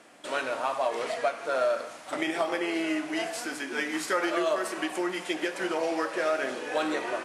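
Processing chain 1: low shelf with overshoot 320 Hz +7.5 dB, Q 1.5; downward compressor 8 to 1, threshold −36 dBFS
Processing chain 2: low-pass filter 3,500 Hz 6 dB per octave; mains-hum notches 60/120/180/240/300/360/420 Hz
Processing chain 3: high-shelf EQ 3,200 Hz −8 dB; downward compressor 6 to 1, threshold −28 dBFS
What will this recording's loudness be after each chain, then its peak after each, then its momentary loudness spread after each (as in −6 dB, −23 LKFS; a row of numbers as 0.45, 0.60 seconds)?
−39.5, −30.5, −33.5 LKFS; −23.0, −13.5, −17.5 dBFS; 2, 5, 3 LU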